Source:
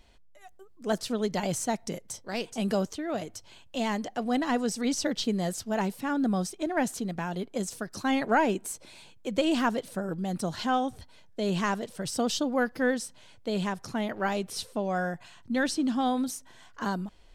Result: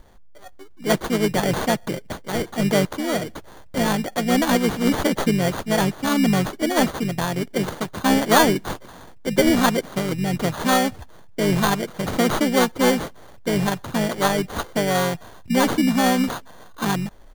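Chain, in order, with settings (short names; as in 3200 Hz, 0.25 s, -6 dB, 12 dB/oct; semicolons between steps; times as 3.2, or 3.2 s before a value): sample-and-hold 17×; harmoniser -5 st -6 dB; gain +7.5 dB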